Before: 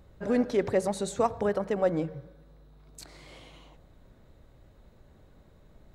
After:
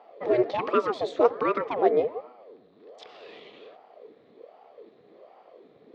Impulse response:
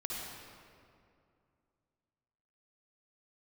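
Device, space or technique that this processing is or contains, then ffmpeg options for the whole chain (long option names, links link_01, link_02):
voice changer toy: -af "aeval=exprs='val(0)*sin(2*PI*460*n/s+460*0.75/1.3*sin(2*PI*1.3*n/s))':channel_layout=same,highpass=410,equalizer=frequency=450:width_type=q:width=4:gain=9,equalizer=frequency=890:width_type=q:width=4:gain=-9,equalizer=frequency=1500:width_type=q:width=4:gain=-9,equalizer=frequency=2800:width_type=q:width=4:gain=-3,lowpass=frequency=3900:width=0.5412,lowpass=frequency=3900:width=1.3066,volume=8.5dB"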